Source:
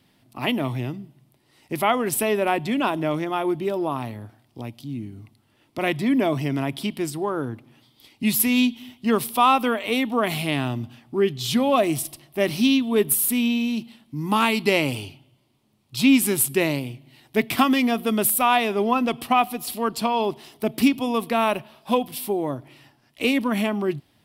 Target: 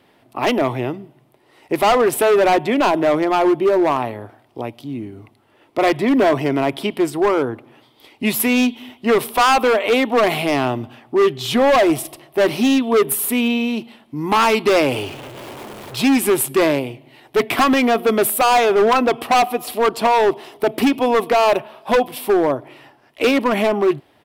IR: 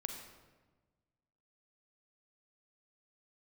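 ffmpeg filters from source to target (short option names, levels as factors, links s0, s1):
-filter_complex "[0:a]asettb=1/sr,asplit=3[s0][s1][s2];[s0]atrim=end=14.914[s3];[s1]atrim=start=14.91:end=16.02,asetpts=PTS-STARTPTS,afade=t=in:d=0.004:c=qsin,afade=t=out:st=1.106:d=0.004:c=qsin,aeval=exprs='val(0)+0.5*0.0178*sgn(val(0))':c=same[s4];[s2]atrim=start=16.016[s5];[s3][s4]acrossfade=d=0.004:c1=hsin:c2=qsin[s6];[s6][s5]acrossfade=d=0.004:c1=qsin:c2=hsin,firequalizer=gain_entry='entry(190,0);entry(400,13);entry(4600,0)':delay=0.05:min_phase=1,asoftclip=type=hard:threshold=0.282"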